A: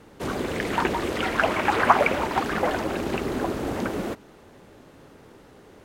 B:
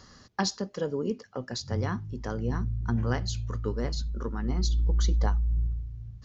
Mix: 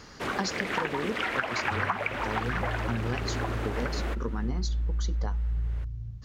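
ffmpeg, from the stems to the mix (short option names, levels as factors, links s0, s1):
-filter_complex "[0:a]equalizer=f=1900:w=0.51:g=11,volume=0.473[s0];[1:a]volume=1.41[s1];[s0][s1]amix=inputs=2:normalize=0,acompressor=threshold=0.0501:ratio=6"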